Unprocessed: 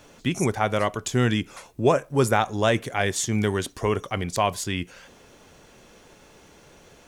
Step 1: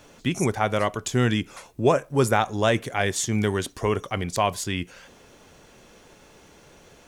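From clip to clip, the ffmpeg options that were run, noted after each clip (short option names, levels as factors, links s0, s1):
-af anull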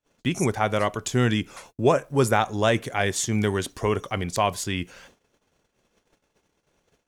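-af "agate=range=0.0158:threshold=0.00398:ratio=16:detection=peak"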